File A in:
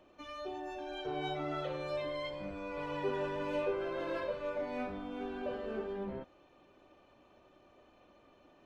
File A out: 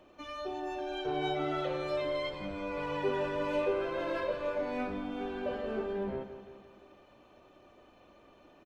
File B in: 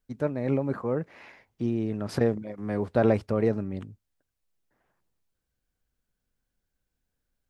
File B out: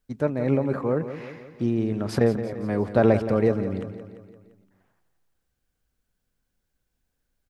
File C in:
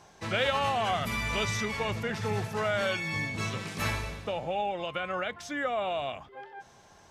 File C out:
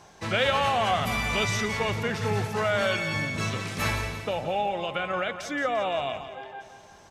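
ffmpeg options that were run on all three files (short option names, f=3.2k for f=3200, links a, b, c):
-af "aecho=1:1:172|344|516|688|860|1032:0.266|0.146|0.0805|0.0443|0.0243|0.0134,volume=3.5dB"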